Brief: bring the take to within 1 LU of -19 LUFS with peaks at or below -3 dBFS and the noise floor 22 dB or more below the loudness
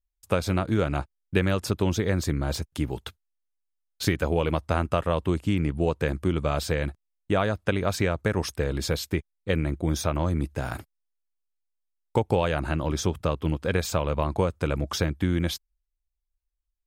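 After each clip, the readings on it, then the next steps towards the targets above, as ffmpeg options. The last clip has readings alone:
loudness -27.0 LUFS; peak level -9.0 dBFS; loudness target -19.0 LUFS
-> -af "volume=2.51,alimiter=limit=0.708:level=0:latency=1"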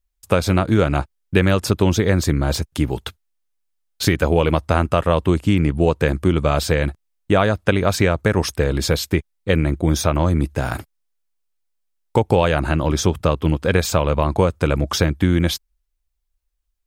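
loudness -19.5 LUFS; peak level -3.0 dBFS; noise floor -73 dBFS

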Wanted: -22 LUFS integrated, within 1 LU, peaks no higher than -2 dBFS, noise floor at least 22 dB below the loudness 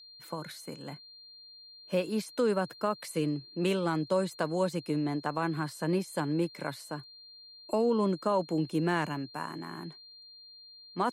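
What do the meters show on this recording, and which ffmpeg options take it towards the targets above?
steady tone 4.2 kHz; tone level -50 dBFS; loudness -32.0 LUFS; peak level -17.5 dBFS; loudness target -22.0 LUFS
-> -af "bandreject=f=4200:w=30"
-af "volume=3.16"

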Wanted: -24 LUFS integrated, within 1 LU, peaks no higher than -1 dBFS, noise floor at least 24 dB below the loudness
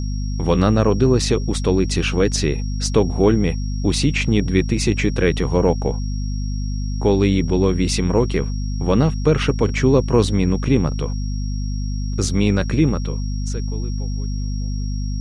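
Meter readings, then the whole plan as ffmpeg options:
hum 50 Hz; highest harmonic 250 Hz; hum level -21 dBFS; steady tone 5.6 kHz; tone level -39 dBFS; loudness -20.0 LUFS; peak level -2.0 dBFS; loudness target -24.0 LUFS
-> -af "bandreject=f=50:t=h:w=4,bandreject=f=100:t=h:w=4,bandreject=f=150:t=h:w=4,bandreject=f=200:t=h:w=4,bandreject=f=250:t=h:w=4"
-af "bandreject=f=5600:w=30"
-af "volume=0.631"

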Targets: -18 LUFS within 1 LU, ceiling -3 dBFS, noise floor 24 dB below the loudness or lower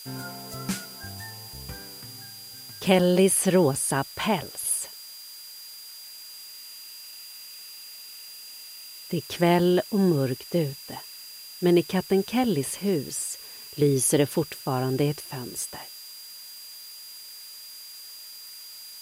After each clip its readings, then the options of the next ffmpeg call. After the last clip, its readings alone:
steady tone 4.8 kHz; tone level -43 dBFS; noise floor -43 dBFS; noise floor target -49 dBFS; loudness -25.0 LUFS; peak level -6.5 dBFS; loudness target -18.0 LUFS
-> -af "bandreject=f=4800:w=30"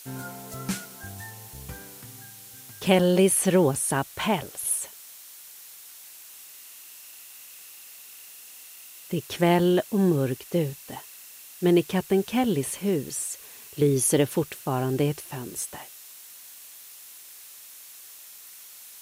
steady tone not found; noise floor -46 dBFS; noise floor target -49 dBFS
-> -af "afftdn=nr=6:nf=-46"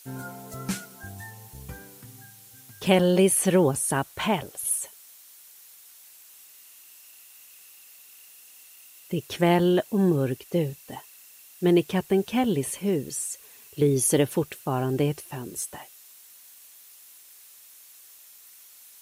noise floor -51 dBFS; loudness -25.0 LUFS; peak level -6.5 dBFS; loudness target -18.0 LUFS
-> -af "volume=2.24,alimiter=limit=0.708:level=0:latency=1"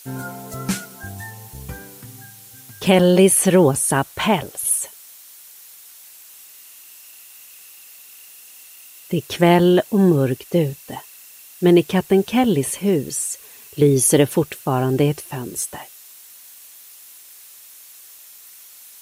loudness -18.0 LUFS; peak level -3.0 dBFS; noise floor -44 dBFS

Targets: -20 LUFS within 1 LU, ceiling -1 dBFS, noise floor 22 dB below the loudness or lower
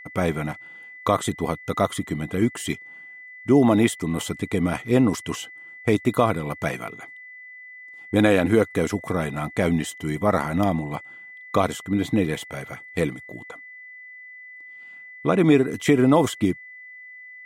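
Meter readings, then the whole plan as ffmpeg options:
steady tone 2 kHz; tone level -40 dBFS; loudness -23.0 LUFS; peak level -5.0 dBFS; loudness target -20.0 LUFS
-> -af "bandreject=f=2000:w=30"
-af "volume=1.41"

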